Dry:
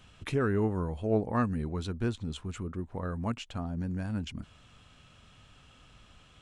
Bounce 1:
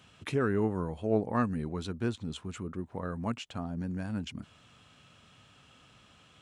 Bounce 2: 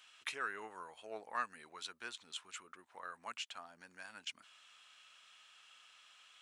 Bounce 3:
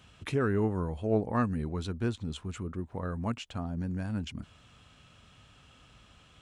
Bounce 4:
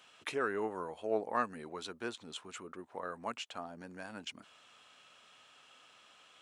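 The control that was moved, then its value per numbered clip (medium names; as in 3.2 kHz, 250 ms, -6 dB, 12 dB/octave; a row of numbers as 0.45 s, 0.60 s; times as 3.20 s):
high-pass, cutoff frequency: 110 Hz, 1.4 kHz, 43 Hz, 520 Hz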